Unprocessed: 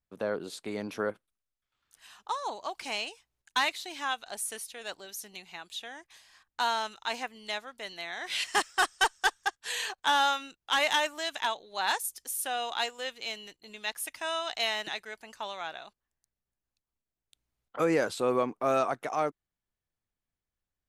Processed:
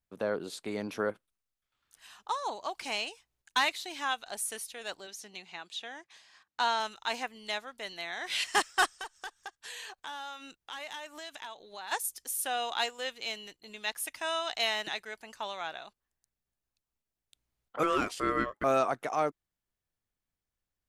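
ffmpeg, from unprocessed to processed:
ffmpeg -i in.wav -filter_complex "[0:a]asettb=1/sr,asplit=3[link_01][link_02][link_03];[link_01]atrim=end=5.074[link_04];[link_02]atrim=start=5.07:end=6.8,asetpts=PTS-STARTPTS,afade=type=in:duration=0.004:curve=qsin,afade=type=out:start_time=1.726:duration=0.004:curve=qsin,highpass=140,lowpass=7000[link_05];[link_03]atrim=start=6.796[link_06];[link_04][link_05]acrossfade=duration=0.004:curve1=hsin:curve2=qsin[link_07];[link_07][link_06]acrossfade=duration=0.004:curve1=qsin:curve2=hsin,asplit=3[link_08][link_09][link_10];[link_08]afade=type=out:start_time=8.95:duration=0.02[link_11];[link_09]acompressor=threshold=-43dB:ratio=3:attack=3.2:release=140:knee=1:detection=peak,afade=type=in:start_time=8.95:duration=0.02,afade=type=out:start_time=11.91:duration=0.02[link_12];[link_10]afade=type=in:start_time=11.91:duration=0.02[link_13];[link_11][link_12][link_13]amix=inputs=3:normalize=0,asettb=1/sr,asplit=3[link_14][link_15][link_16];[link_14]atrim=end=17.834[link_17];[link_15]atrim=start=17.83:end=18.64,asetpts=PTS-STARTPTS,afade=type=in:duration=0.004:curve=qsin,afade=type=out:start_time=0.806:duration=0.004:curve=qsin,aeval=exprs='val(0)*sin(2*PI*840*n/s)':channel_layout=same[link_18];[link_16]atrim=start=18.636[link_19];[link_17][link_18]acrossfade=duration=0.004:curve1=hsin:curve2=qsin[link_20];[link_20][link_19]acrossfade=duration=0.004:curve1=qsin:curve2=hsin" out.wav

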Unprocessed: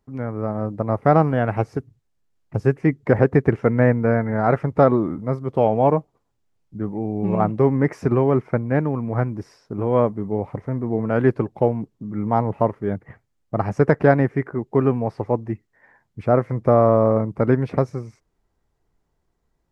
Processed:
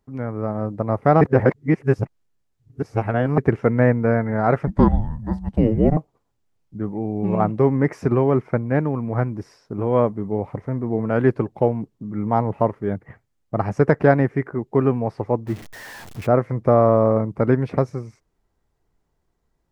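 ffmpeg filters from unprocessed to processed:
ffmpeg -i in.wav -filter_complex "[0:a]asettb=1/sr,asplit=3[link_01][link_02][link_03];[link_01]atrim=end=4.674[link_04];[link_02]atrim=start=4.67:end=5.97,asetpts=PTS-STARTPTS,afade=type=in:duration=0.004:curve=qsin,afade=type=out:start_time=1.296:duration=0.004:curve=qsin,afreqshift=-320[link_05];[link_03]atrim=start=5.966[link_06];[link_04][link_05]acrossfade=duration=0.004:curve1=hsin:curve2=qsin[link_07];[link_07][link_06]acrossfade=duration=0.004:curve1=qsin:curve2=hsin,asettb=1/sr,asplit=3[link_08][link_09][link_10];[link_08]atrim=end=15.474[link_11];[link_09]atrim=start=15.47:end=16.27,asetpts=PTS-STARTPTS,afade=type=in:duration=0.004:curve=qsin,afade=type=out:start_time=0.796:duration=0.004:curve=qsin,aeval=exprs='val(0)+0.5*0.0211*sgn(val(0))':channel_layout=same[link_12];[link_10]atrim=start=16.266[link_13];[link_11][link_12]acrossfade=duration=0.004:curve1=hsin:curve2=qsin[link_14];[link_14][link_13]acrossfade=duration=0.004:curve1=qsin:curve2=hsin,asplit=3[link_15][link_16][link_17];[link_15]atrim=end=1.212[link_18];[link_16]atrim=start=1.208:end=3.382,asetpts=PTS-STARTPTS,areverse[link_19];[link_17]atrim=start=3.378[link_20];[link_18][link_19]acrossfade=duration=0.004:curve1=hsin:curve2=hsin[link_21];[link_21][link_20]acrossfade=duration=0.004:curve1=hsin:curve2=hsin" out.wav

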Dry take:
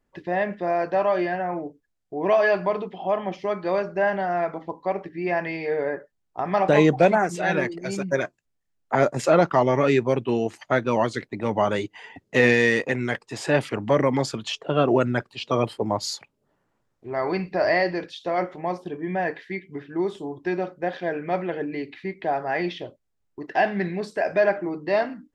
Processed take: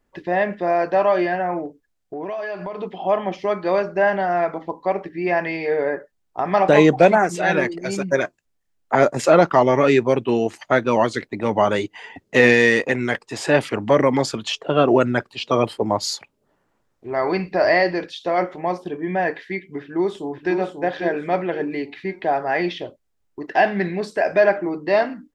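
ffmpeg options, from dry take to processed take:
ffmpeg -i in.wav -filter_complex "[0:a]asettb=1/sr,asplit=3[link_01][link_02][link_03];[link_01]atrim=end=1.654[link_04];[link_02]atrim=start=1.65:end=2.83,asetpts=PTS-STARTPTS,afade=type=in:duration=0.004:curve=qsin,afade=type=out:start_time=1.176:duration=0.004:curve=qsin,acompressor=threshold=-30dB:ratio=6:attack=3.2:release=140:knee=1:detection=peak[link_05];[link_03]atrim=start=2.826[link_06];[link_04][link_05]acrossfade=duration=0.004:curve1=hsin:curve2=qsin[link_07];[link_07][link_06]acrossfade=duration=0.004:curve1=qsin:curve2=hsin,asplit=2[link_08][link_09];[link_09]afade=type=in:start_time=19.79:duration=0.01,afade=type=out:start_time=20.57:duration=0.01,aecho=0:1:540|1080|1620|2160:0.501187|0.175416|0.0613954|0.0214884[link_10];[link_08][link_10]amix=inputs=2:normalize=0,equalizer=frequency=130:width_type=o:width=1:gain=-4,volume=4.5dB" out.wav

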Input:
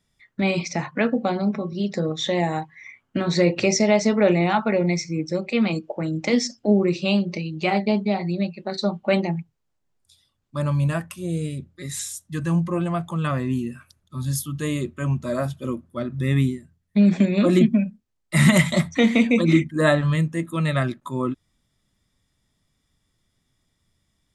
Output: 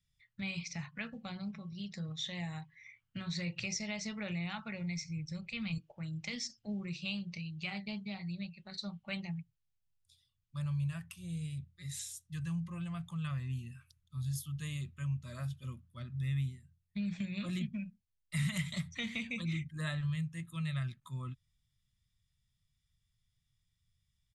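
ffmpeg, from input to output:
ffmpeg -i in.wav -filter_complex "[0:a]asettb=1/sr,asplit=3[link_01][link_02][link_03];[link_01]atrim=end=4.694[link_04];[link_02]atrim=start=4.69:end=5.78,asetpts=PTS-STARTPTS,afade=type=in:duration=0.004:curve=qsin,afade=type=out:start_time=1.086:duration=0.004:curve=qsin,asubboost=boost=11.5:cutoff=150[link_05];[link_03]atrim=start=5.776[link_06];[link_04][link_05]acrossfade=duration=0.004:curve1=hsin:curve2=qsin[link_07];[link_07][link_06]acrossfade=duration=0.004:curve1=qsin:curve2=hsin,firequalizer=gain_entry='entry(130,0);entry(290,-25);entry(1200,-12);entry(2700,-3);entry(7300,-6)':delay=0.05:min_phase=1,acompressor=threshold=-29dB:ratio=2,volume=-6.5dB" out.wav

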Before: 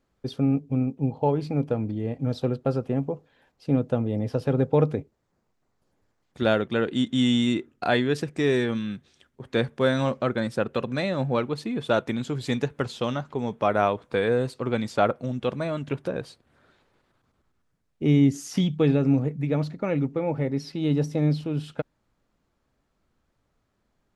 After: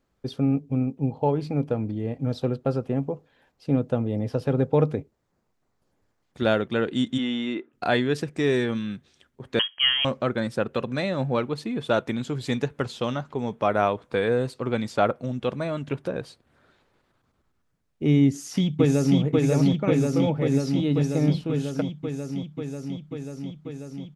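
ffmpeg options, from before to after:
ffmpeg -i in.wav -filter_complex "[0:a]asplit=3[link_01][link_02][link_03];[link_01]afade=type=out:start_time=7.17:duration=0.02[link_04];[link_02]highpass=320,lowpass=2700,afade=type=in:start_time=7.17:duration=0.02,afade=type=out:start_time=7.72:duration=0.02[link_05];[link_03]afade=type=in:start_time=7.72:duration=0.02[link_06];[link_04][link_05][link_06]amix=inputs=3:normalize=0,asettb=1/sr,asplit=3[link_07][link_08][link_09];[link_07]atrim=end=9.594[link_10];[link_08]atrim=start=9.59:end=10.05,asetpts=PTS-STARTPTS,afade=type=in:duration=0.004:curve=qsin,afade=type=out:start_time=0.456:duration=0.004:curve=qsin,lowpass=frequency=2900:width_type=q:width=0.5098,lowpass=frequency=2900:width_type=q:width=0.6013,lowpass=frequency=2900:width_type=q:width=0.9,lowpass=frequency=2900:width_type=q:width=2.563,afreqshift=-3400[link_11];[link_09]atrim=start=10.046[link_12];[link_10][link_11]acrossfade=duration=0.004:curve1=hsin:curve2=qsin[link_13];[link_13][link_12]acrossfade=duration=0.004:curve1=qsin:curve2=hsin,asplit=2[link_14][link_15];[link_15]afade=type=in:start_time=18.25:duration=0.01,afade=type=out:start_time=19.19:duration=0.01,aecho=0:1:540|1080|1620|2160|2700|3240|3780|4320|4860|5400|5940|6480:0.891251|0.713001|0.570401|0.45632|0.365056|0.292045|0.233636|0.186909|0.149527|0.119622|0.0956973|0.0765579[link_16];[link_14][link_16]amix=inputs=2:normalize=0" out.wav

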